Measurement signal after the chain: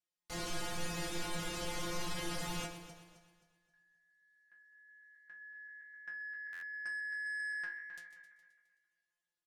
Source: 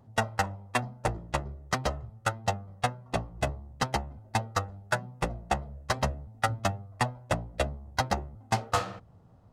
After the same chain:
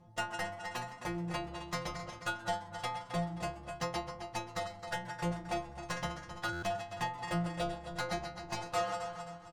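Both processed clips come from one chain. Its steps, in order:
feedback delay that plays each chunk backwards 132 ms, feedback 58%, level −12.5 dB
low-pass filter 9,200 Hz 12 dB per octave
in parallel at +2 dB: downward compressor, threshold −36 dBFS
on the sum: soft clipping −21.5 dBFS
stiff-string resonator 170 Hz, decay 0.38 s, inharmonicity 0.002
on a send: echo with shifted repeats 129 ms, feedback 50%, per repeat +150 Hz, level −21 dB
on the sum: buffer that repeats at 0:06.52, samples 512, times 8
level +7.5 dB

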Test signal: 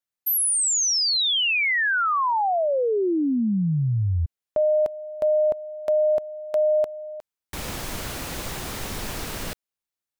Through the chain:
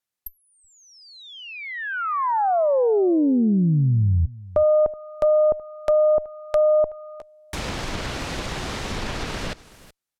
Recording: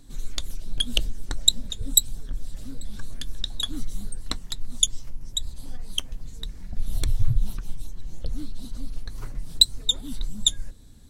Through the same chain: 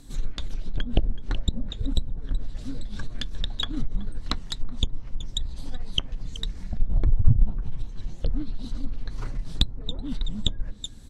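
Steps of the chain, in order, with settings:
harmonic generator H 3 −32 dB, 4 −12 dB, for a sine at −1 dBFS
on a send: single-tap delay 375 ms −20 dB
on the sum: treble cut that deepens with the level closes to 910 Hz, closed at −20.5 dBFS
level +4.5 dB

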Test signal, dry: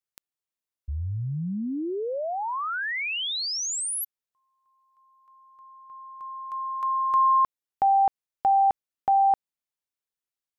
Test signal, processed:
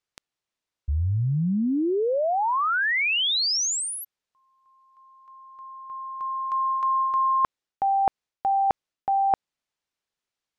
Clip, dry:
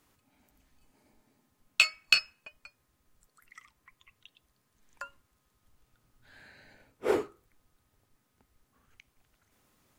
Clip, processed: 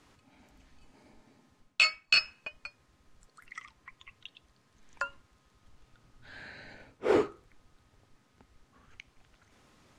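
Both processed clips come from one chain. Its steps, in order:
low-pass filter 6,200 Hz 12 dB per octave
reversed playback
downward compressor 8 to 1, threshold −29 dBFS
reversed playback
level +8 dB

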